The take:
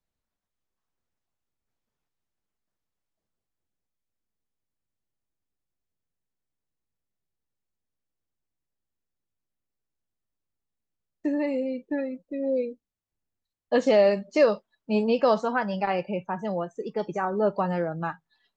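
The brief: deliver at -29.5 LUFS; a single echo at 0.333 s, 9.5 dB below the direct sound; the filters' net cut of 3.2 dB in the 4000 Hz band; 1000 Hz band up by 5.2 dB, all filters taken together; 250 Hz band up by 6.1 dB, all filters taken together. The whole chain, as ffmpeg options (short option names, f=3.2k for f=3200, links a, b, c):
-af "equalizer=f=250:t=o:g=7,equalizer=f=1k:t=o:g=6.5,equalizer=f=4k:t=o:g=-5,aecho=1:1:333:0.335,volume=-7.5dB"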